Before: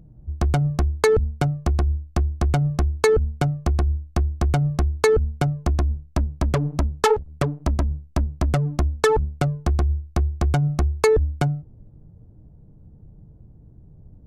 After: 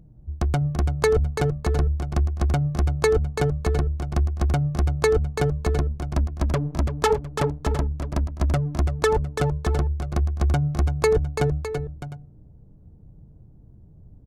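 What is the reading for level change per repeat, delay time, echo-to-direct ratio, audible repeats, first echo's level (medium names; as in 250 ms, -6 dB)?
no regular repeats, 335 ms, -6.5 dB, 3, -8.0 dB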